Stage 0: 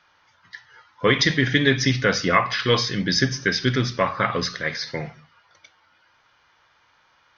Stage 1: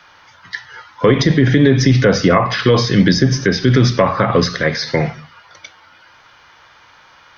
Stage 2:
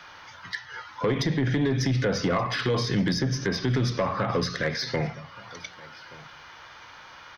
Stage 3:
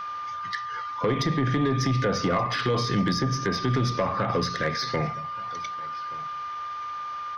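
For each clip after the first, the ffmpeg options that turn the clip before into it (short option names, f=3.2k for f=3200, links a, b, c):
-filter_complex "[0:a]acrossover=split=140|910[a][b][c];[c]acompressor=threshold=-32dB:ratio=10[d];[a][b][d]amix=inputs=3:normalize=0,alimiter=level_in=15dB:limit=-1dB:release=50:level=0:latency=1,volume=-1dB"
-af "acompressor=threshold=-39dB:ratio=1.5,asoftclip=type=tanh:threshold=-17dB,aecho=1:1:1176:0.0794"
-af "aeval=exprs='val(0)+0.0282*sin(2*PI*1200*n/s)':c=same"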